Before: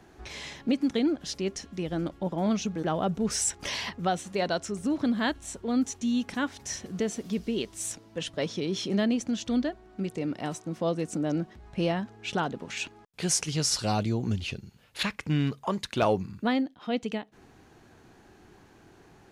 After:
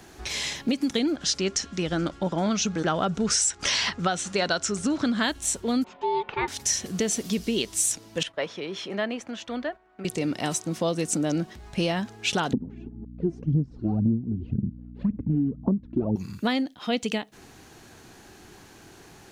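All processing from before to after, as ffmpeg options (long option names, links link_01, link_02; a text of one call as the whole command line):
ffmpeg -i in.wav -filter_complex "[0:a]asettb=1/sr,asplit=3[link_01][link_02][link_03];[link_01]atrim=end=1.164[link_04];[link_02]atrim=start=1.16:end=5.23,asetpts=PTS-STARTPTS,afade=type=in:duration=0.004:curve=qsin,afade=type=out:start_time=4.066:duration=0.004:curve=qsin,lowpass=frequency=8200:width=0.5412,lowpass=frequency=8200:width=1.3066,equalizer=frequency=1400:width_type=o:width=0.43:gain=7.5[link_05];[link_03]atrim=start=5.226[link_06];[link_04][link_05]acrossfade=duration=0.004:curve1=hsin:curve2=qsin[link_07];[link_07][link_06]acrossfade=duration=0.004:curve1=qsin:curve2=hsin,asettb=1/sr,asplit=3[link_08][link_09][link_10];[link_08]atrim=end=5.844[link_11];[link_09]atrim=start=5.84:end=6.48,asetpts=PTS-STARTPTS,afade=type=in:duration=0.004:curve=qsin,afade=type=out:start_time=0.636:duration=0.004:curve=qsin,lowpass=frequency=2500:width=0.5412,lowpass=frequency=2500:width=1.3066,equalizer=frequency=920:width_type=o:width=0.27:gain=-7,aeval=exprs='val(0)*sin(2*PI*640*n/s)':channel_layout=same[link_12];[link_10]atrim=start=6.476[link_13];[link_11][link_12]acrossfade=duration=0.004:curve1=hsin:curve2=qsin[link_14];[link_14][link_13]acrossfade=duration=0.004:curve1=qsin:curve2=hsin,asettb=1/sr,asplit=3[link_15][link_16][link_17];[link_15]atrim=end=8.234[link_18];[link_16]atrim=start=8.23:end=10.05,asetpts=PTS-STARTPTS,afade=type=in:duration=0.004:curve=qsin,afade=type=out:start_time=1.816:duration=0.004:curve=qsin,agate=range=-7dB:threshold=-47dB:ratio=16:release=100:detection=peak,acrossover=split=490 2400:gain=0.2 1 0.0891[link_19][link_20][link_21];[link_19][link_20][link_21]amix=inputs=3:normalize=0[link_22];[link_17]atrim=start=10.046[link_23];[link_18][link_22]acrossfade=duration=0.004:curve1=hsin:curve2=qsin[link_24];[link_24][link_23]acrossfade=duration=0.004:curve1=qsin:curve2=hsin,asettb=1/sr,asplit=3[link_25][link_26][link_27];[link_25]atrim=end=12.534[link_28];[link_26]atrim=start=12.53:end=16.16,asetpts=PTS-STARTPTS,afade=type=in:duration=0.004:curve=qsin,afade=type=out:start_time=3.626:duration=0.004:curve=qsin,aphaser=in_gain=1:out_gain=1:delay=3:decay=0.72:speed=1.9:type=sinusoidal,aeval=exprs='val(0)+0.00398*(sin(2*PI*60*n/s)+sin(2*PI*2*60*n/s)/2+sin(2*PI*3*60*n/s)/3+sin(2*PI*4*60*n/s)/4+sin(2*PI*5*60*n/s)/5)':channel_layout=same,lowpass=frequency=250:width_type=q:width=3[link_29];[link_27]atrim=start=16.156[link_30];[link_28][link_29]acrossfade=duration=0.004:curve1=hsin:curve2=qsin[link_31];[link_31][link_30]acrossfade=duration=0.004:curve1=qsin:curve2=hsin,highshelf=frequency=3000:gain=11.5,acompressor=threshold=-25dB:ratio=10,volume=4.5dB" out.wav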